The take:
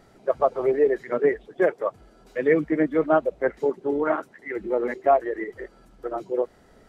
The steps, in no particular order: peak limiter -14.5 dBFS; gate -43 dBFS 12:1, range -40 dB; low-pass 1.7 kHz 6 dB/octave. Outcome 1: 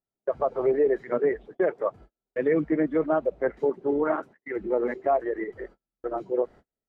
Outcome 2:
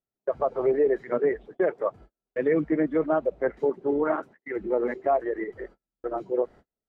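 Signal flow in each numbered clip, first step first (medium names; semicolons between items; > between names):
low-pass > peak limiter > gate; low-pass > gate > peak limiter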